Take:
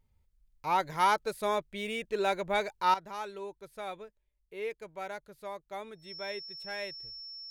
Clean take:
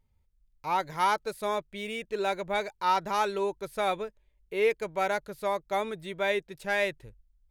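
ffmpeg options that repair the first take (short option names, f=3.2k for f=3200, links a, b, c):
-af "bandreject=f=5.4k:w=30,asetnsamples=n=441:p=0,asendcmd='2.94 volume volume 11.5dB',volume=0dB"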